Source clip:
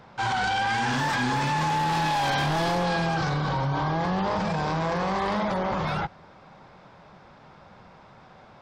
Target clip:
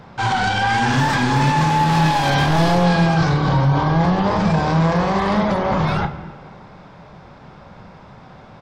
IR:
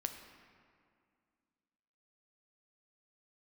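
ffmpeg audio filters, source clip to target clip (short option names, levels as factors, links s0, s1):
-filter_complex "[0:a]asplit=2[s0][s1];[s1]adelay=30,volume=0.282[s2];[s0][s2]amix=inputs=2:normalize=0,asplit=2[s3][s4];[1:a]atrim=start_sample=2205,asetrate=52920,aresample=44100,lowshelf=f=360:g=10.5[s5];[s4][s5]afir=irnorm=-1:irlink=0,volume=1.26[s6];[s3][s6]amix=inputs=2:normalize=0"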